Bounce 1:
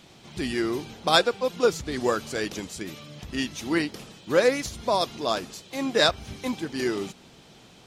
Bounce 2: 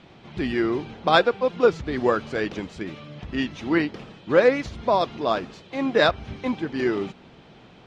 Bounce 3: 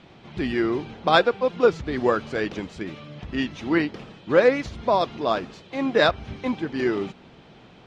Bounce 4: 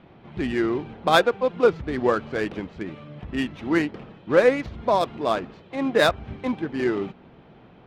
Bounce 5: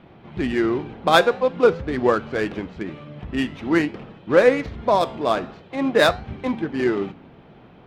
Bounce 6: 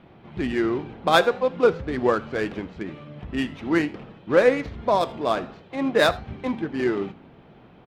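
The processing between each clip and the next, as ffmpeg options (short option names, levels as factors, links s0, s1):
-af "lowpass=2600,volume=1.5"
-af anull
-af "adynamicsmooth=sensitivity=3.5:basefreq=2300"
-af "flanger=delay=8.2:depth=8.6:regen=-85:speed=0.48:shape=triangular,volume=2.24"
-af "aecho=1:1:81:0.075,volume=0.75"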